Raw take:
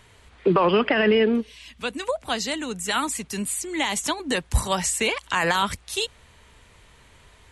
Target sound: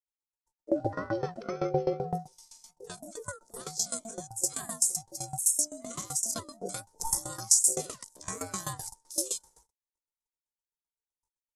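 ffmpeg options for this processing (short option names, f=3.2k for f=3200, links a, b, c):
-filter_complex "[0:a]afftfilt=real='real(if(between(b,1,1008),(2*floor((b-1)/24)+1)*24-b,b),0)':imag='imag(if(between(b,1,1008),(2*floor((b-1)/24)+1)*24-b,b),0)*if(between(b,1,1008),-1,1)':win_size=2048:overlap=0.75,acrossover=split=200[a][b];[b]adelay=50[c];[a][c]amix=inputs=2:normalize=0,agate=range=-42dB:threshold=-46dB:ratio=16:detection=peak,atempo=0.65,firequalizer=gain_entry='entry(120,0);entry(2600,-25);entry(5600,12)':delay=0.05:min_phase=1,aeval=exprs='val(0)*sin(2*PI*450*n/s)':c=same,adynamicequalizer=threshold=0.0141:dfrequency=310:dqfactor=2.7:tfrequency=310:tqfactor=2.7:attack=5:release=100:ratio=0.375:range=1.5:mode=cutabove:tftype=bell,aeval=exprs='val(0)*pow(10,-19*if(lt(mod(7.8*n/s,1),2*abs(7.8)/1000),1-mod(7.8*n/s,1)/(2*abs(7.8)/1000),(mod(7.8*n/s,1)-2*abs(7.8)/1000)/(1-2*abs(7.8)/1000))/20)':c=same"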